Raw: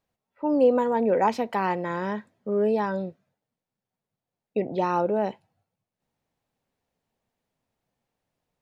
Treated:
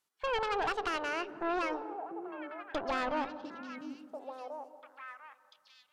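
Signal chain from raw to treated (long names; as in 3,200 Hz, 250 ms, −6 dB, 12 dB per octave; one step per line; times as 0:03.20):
gliding playback speed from 184% → 107%
treble cut that deepens with the level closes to 2,900 Hz, closed at −23.5 dBFS
spectral tilt +3.5 dB per octave
downward compressor 5 to 1, threshold −24 dBFS, peak gain reduction 8 dB
tube saturation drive 27 dB, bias 0.8
formants moved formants −2 semitones
echo through a band-pass that steps 694 ms, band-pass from 240 Hz, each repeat 1.4 octaves, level −3 dB
on a send at −15.5 dB: convolution reverb RT60 2.1 s, pre-delay 141 ms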